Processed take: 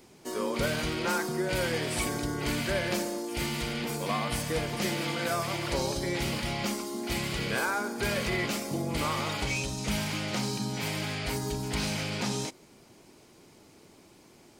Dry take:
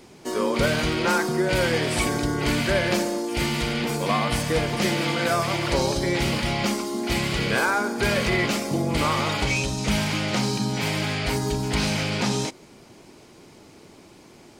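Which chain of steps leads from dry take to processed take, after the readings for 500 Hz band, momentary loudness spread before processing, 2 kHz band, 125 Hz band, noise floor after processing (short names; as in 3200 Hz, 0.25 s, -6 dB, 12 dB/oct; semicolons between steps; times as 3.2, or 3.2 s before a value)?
-7.5 dB, 3 LU, -7.0 dB, -7.5 dB, -56 dBFS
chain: high shelf 9500 Hz +8.5 dB; gain -7.5 dB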